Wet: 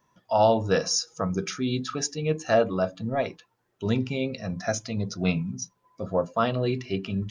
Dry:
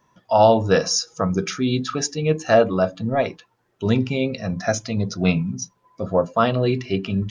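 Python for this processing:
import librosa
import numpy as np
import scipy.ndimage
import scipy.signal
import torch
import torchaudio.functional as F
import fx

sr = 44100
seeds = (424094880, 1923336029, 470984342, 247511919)

y = fx.high_shelf(x, sr, hz=7200.0, db=5.0)
y = y * librosa.db_to_amplitude(-6.0)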